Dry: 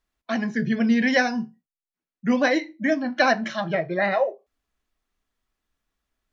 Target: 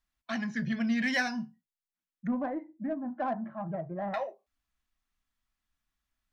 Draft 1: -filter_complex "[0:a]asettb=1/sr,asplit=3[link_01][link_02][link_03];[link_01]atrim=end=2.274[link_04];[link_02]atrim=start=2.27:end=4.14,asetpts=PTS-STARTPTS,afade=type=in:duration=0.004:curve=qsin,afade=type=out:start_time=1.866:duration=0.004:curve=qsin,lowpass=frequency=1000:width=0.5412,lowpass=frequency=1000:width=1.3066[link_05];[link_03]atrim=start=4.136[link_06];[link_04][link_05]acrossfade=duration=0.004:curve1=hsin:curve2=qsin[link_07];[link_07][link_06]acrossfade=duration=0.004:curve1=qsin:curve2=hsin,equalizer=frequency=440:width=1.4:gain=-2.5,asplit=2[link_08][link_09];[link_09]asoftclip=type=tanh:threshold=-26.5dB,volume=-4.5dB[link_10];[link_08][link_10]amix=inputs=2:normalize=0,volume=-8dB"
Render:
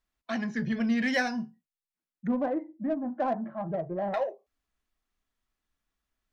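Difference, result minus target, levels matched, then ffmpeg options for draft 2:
500 Hz band +3.0 dB
-filter_complex "[0:a]asettb=1/sr,asplit=3[link_01][link_02][link_03];[link_01]atrim=end=2.274[link_04];[link_02]atrim=start=2.27:end=4.14,asetpts=PTS-STARTPTS,afade=type=in:duration=0.004:curve=qsin,afade=type=out:start_time=1.866:duration=0.004:curve=qsin,lowpass=frequency=1000:width=0.5412,lowpass=frequency=1000:width=1.3066[link_05];[link_03]atrim=start=4.136[link_06];[link_04][link_05]acrossfade=duration=0.004:curve1=hsin:curve2=qsin[link_07];[link_07][link_06]acrossfade=duration=0.004:curve1=qsin:curve2=hsin,equalizer=frequency=440:width=1.4:gain=-13,asplit=2[link_08][link_09];[link_09]asoftclip=type=tanh:threshold=-26.5dB,volume=-4.5dB[link_10];[link_08][link_10]amix=inputs=2:normalize=0,volume=-8dB"

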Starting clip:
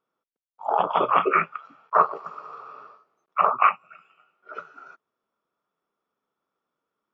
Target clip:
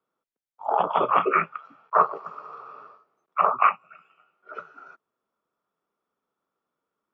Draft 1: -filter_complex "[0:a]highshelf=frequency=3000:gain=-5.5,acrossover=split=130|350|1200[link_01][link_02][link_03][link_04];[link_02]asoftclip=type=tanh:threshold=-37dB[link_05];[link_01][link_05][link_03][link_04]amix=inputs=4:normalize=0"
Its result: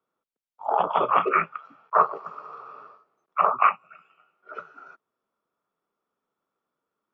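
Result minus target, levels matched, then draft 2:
soft clipping: distortion +10 dB
-filter_complex "[0:a]highshelf=frequency=3000:gain=-5.5,acrossover=split=130|350|1200[link_01][link_02][link_03][link_04];[link_02]asoftclip=type=tanh:threshold=-26dB[link_05];[link_01][link_05][link_03][link_04]amix=inputs=4:normalize=0"

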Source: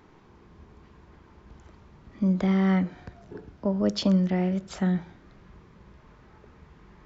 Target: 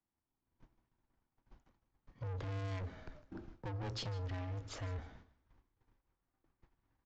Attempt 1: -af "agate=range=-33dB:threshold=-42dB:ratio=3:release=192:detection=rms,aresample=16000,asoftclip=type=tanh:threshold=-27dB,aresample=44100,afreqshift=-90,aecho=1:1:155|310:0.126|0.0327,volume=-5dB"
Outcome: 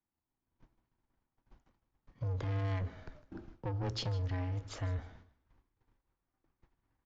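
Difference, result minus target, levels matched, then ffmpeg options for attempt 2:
soft clipping: distortion −4 dB
-af "agate=range=-33dB:threshold=-42dB:ratio=3:release=192:detection=rms,aresample=16000,asoftclip=type=tanh:threshold=-34dB,aresample=44100,afreqshift=-90,aecho=1:1:155|310:0.126|0.0327,volume=-5dB"

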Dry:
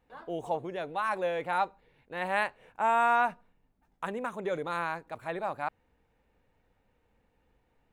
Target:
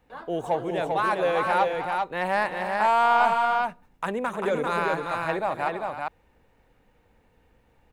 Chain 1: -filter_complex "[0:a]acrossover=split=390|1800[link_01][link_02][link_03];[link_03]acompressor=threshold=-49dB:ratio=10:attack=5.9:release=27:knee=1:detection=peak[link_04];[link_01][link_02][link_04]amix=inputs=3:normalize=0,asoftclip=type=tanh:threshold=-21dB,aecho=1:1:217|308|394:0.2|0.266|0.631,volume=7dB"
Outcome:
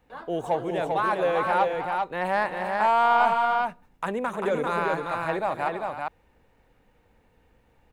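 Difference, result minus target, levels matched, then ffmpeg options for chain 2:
downward compressor: peak gain reduction +6 dB
-filter_complex "[0:a]acrossover=split=390|1800[link_01][link_02][link_03];[link_03]acompressor=threshold=-42.5dB:ratio=10:attack=5.9:release=27:knee=1:detection=peak[link_04];[link_01][link_02][link_04]amix=inputs=3:normalize=0,asoftclip=type=tanh:threshold=-21dB,aecho=1:1:217|308|394:0.2|0.266|0.631,volume=7dB"

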